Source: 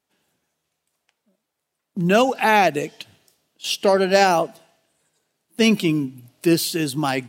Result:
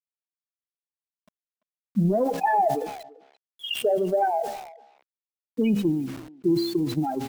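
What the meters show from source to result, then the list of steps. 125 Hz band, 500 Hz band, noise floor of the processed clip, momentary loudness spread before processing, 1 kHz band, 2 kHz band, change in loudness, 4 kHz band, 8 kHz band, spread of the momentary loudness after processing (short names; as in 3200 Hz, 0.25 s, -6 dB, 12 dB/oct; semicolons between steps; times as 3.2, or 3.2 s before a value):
-3.0 dB, -5.5 dB, under -85 dBFS, 14 LU, -4.5 dB, -14.0 dB, -6.0 dB, -9.5 dB, -15.0 dB, 13 LU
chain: loudest bins only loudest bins 4; transient shaper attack +9 dB, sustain -9 dB; limiter -11 dBFS, peak gain reduction 10.5 dB; LPF 4800 Hz 12 dB/oct; resonator 68 Hz, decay 0.82 s, harmonics all, mix 40%; bit-crush 9-bit; speakerphone echo 0.34 s, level -27 dB; sustainer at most 62 dB/s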